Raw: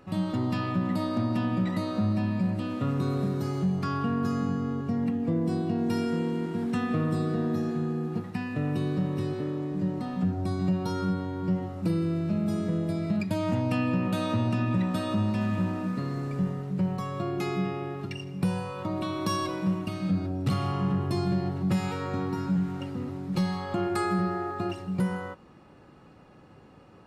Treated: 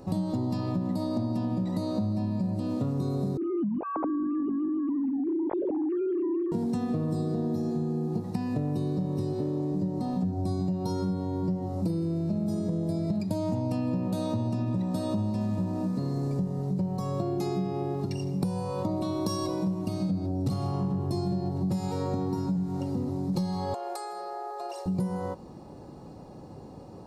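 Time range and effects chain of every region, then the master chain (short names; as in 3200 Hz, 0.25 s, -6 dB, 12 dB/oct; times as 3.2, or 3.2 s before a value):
3.37–6.52 sine-wave speech + compressor, threshold -28 dBFS + air absorption 330 m
23.74–24.86 elliptic high-pass 440 Hz + compressor 12:1, threshold -37 dBFS
whole clip: band shelf 2000 Hz -14 dB; compressor, threshold -35 dBFS; gain +8.5 dB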